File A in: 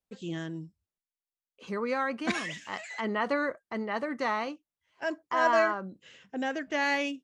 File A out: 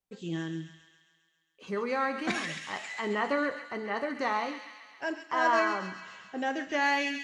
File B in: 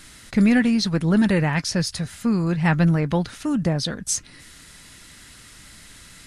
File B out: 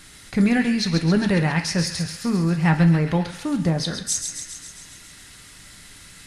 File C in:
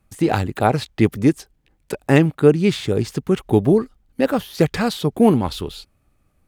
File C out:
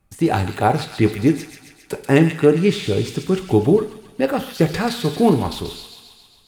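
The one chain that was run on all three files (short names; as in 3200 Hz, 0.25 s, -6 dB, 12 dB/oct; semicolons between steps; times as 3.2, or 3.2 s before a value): thin delay 0.135 s, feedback 65%, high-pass 2000 Hz, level -6 dB; two-slope reverb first 0.47 s, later 1.7 s, from -19 dB, DRR 6.5 dB; gain -1 dB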